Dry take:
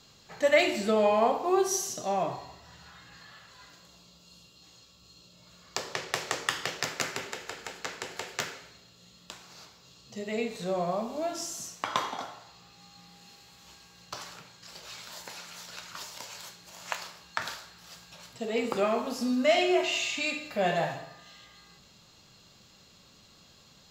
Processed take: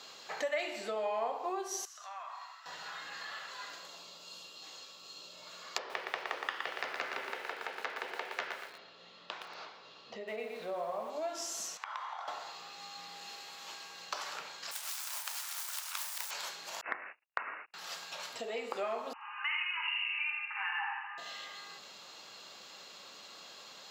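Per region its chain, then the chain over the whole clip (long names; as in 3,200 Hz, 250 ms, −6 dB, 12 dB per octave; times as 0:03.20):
0:01.85–0:02.66: downward compressor 3 to 1, threshold −38 dBFS + four-pole ladder high-pass 1,100 Hz, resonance 55%
0:05.78–0:11.10: high-frequency loss of the air 230 metres + feedback echo at a low word length 117 ms, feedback 35%, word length 8 bits, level −6 dB
0:11.77–0:12.28: high-pass filter 860 Hz 24 dB per octave + spectral tilt −4 dB per octave + downward compressor 2.5 to 1, threshold −51 dBFS
0:14.71–0:16.31: phase distortion by the signal itself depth 0.75 ms + high-pass filter 780 Hz 24 dB per octave + high-shelf EQ 6,100 Hz +9 dB
0:16.81–0:17.74: hold until the input has moved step −44.5 dBFS + noise gate −48 dBFS, range −45 dB + voice inversion scrambler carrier 2,800 Hz
0:19.13–0:21.18: linear-phase brick-wall band-pass 790–3,000 Hz + single-tap delay 81 ms −3 dB
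whole clip: high-shelf EQ 4,800 Hz −8 dB; downward compressor 3 to 1, threshold −47 dBFS; high-pass filter 530 Hz 12 dB per octave; level +10 dB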